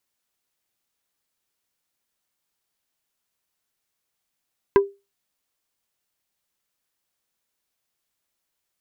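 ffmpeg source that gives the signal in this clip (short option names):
-f lavfi -i "aevalsrc='0.398*pow(10,-3*t/0.25)*sin(2*PI*398*t)+0.2*pow(10,-3*t/0.083)*sin(2*PI*995*t)+0.1*pow(10,-3*t/0.047)*sin(2*PI*1592*t)+0.0501*pow(10,-3*t/0.036)*sin(2*PI*1990*t)+0.0251*pow(10,-3*t/0.026)*sin(2*PI*2587*t)':d=0.45:s=44100"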